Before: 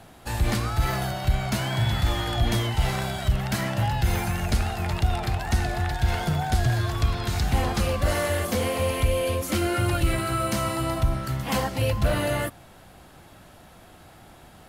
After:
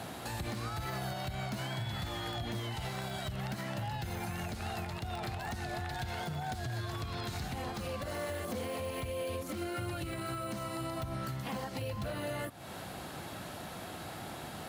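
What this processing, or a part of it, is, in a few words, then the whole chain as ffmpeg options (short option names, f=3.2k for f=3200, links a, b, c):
broadcast voice chain: -af "highpass=99,deesser=0.7,acompressor=threshold=-39dB:ratio=4,equalizer=f=4.1k:t=o:w=0.24:g=3.5,alimiter=level_in=11dB:limit=-24dB:level=0:latency=1:release=231,volume=-11dB,volume=6.5dB"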